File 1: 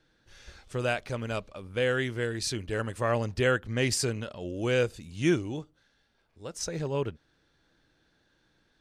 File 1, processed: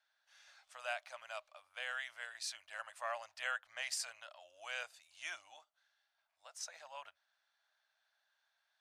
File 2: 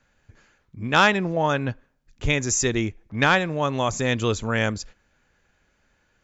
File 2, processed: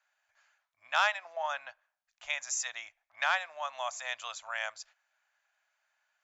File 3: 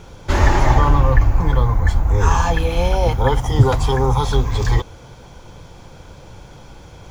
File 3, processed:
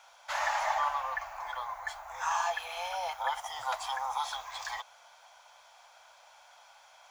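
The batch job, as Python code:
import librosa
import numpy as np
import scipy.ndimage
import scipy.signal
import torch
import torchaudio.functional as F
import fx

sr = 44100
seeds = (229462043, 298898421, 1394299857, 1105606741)

y = scipy.signal.sosfilt(scipy.signal.ellip(4, 1.0, 40, 650.0, 'highpass', fs=sr, output='sos'), x)
y = F.gain(torch.from_numpy(y), -9.0).numpy()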